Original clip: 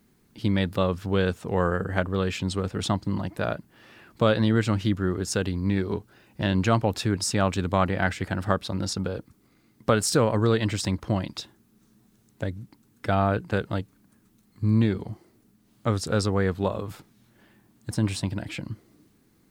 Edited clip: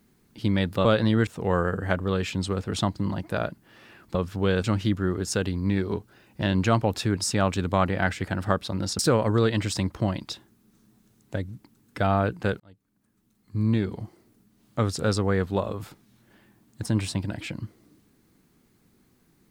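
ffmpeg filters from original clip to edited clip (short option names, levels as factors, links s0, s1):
-filter_complex "[0:a]asplit=7[s0][s1][s2][s3][s4][s5][s6];[s0]atrim=end=0.852[s7];[s1]atrim=start=4.218:end=4.642[s8];[s2]atrim=start=1.338:end=4.222[s9];[s3]atrim=start=0.848:end=1.342[s10];[s4]atrim=start=4.638:end=8.992[s11];[s5]atrim=start=10.068:end=13.68,asetpts=PTS-STARTPTS,afade=t=out:st=3.608:d=0.004:c=hsin[s12];[s6]atrim=start=13.68,asetpts=PTS-STARTPTS,afade=t=in:d=1.43[s13];[s7][s8]acrossfade=d=0.004:c1=hsin:c2=hsin[s14];[s14][s9]acrossfade=d=0.004:c1=hsin:c2=hsin[s15];[s15][s10]acrossfade=d=0.004:c1=hsin:c2=hsin[s16];[s16][s11]acrossfade=d=0.004:c1=hsin:c2=hsin[s17];[s12][s13]concat=n=2:v=0:a=1[s18];[s17][s18]acrossfade=d=0.004:c1=hsin:c2=hsin"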